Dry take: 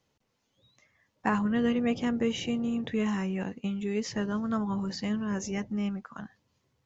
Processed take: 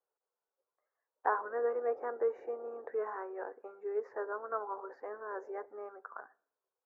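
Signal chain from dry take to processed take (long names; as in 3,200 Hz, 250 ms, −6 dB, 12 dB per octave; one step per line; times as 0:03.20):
elliptic band-pass filter 410–1,500 Hz, stop band 40 dB
noise gate −58 dBFS, range −12 dB
on a send: convolution reverb RT60 0.60 s, pre-delay 4 ms, DRR 19 dB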